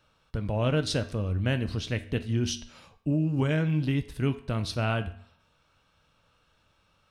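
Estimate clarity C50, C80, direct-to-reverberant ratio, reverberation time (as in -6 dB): 15.0 dB, 18.0 dB, 9.5 dB, 0.55 s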